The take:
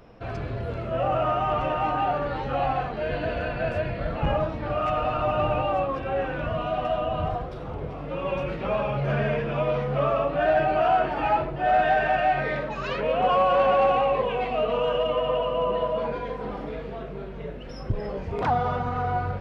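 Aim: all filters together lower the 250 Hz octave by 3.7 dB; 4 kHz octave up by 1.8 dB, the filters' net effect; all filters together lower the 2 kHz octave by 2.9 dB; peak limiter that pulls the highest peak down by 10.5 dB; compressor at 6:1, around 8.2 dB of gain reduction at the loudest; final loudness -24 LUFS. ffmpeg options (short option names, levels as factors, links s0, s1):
-af "equalizer=f=250:t=o:g=-5.5,equalizer=f=2000:t=o:g=-6,equalizer=f=4000:t=o:g=7,acompressor=threshold=0.0447:ratio=6,volume=4.22,alimiter=limit=0.158:level=0:latency=1"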